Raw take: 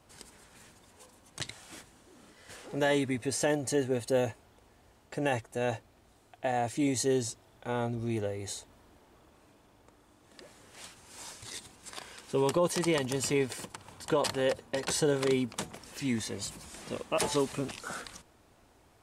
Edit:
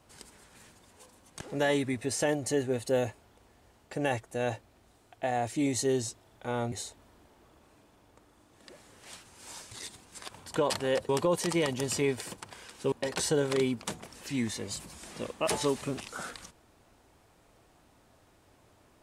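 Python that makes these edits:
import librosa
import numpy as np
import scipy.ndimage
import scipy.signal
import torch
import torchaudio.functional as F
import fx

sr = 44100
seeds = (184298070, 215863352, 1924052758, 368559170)

y = fx.edit(x, sr, fx.cut(start_s=1.41, length_s=1.21),
    fx.cut(start_s=7.93, length_s=0.5),
    fx.swap(start_s=12.0, length_s=0.41, other_s=13.83, other_length_s=0.8), tone=tone)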